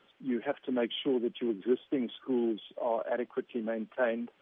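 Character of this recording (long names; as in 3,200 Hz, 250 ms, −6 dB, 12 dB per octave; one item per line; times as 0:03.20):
background noise floor −68 dBFS
spectral slope −3.0 dB per octave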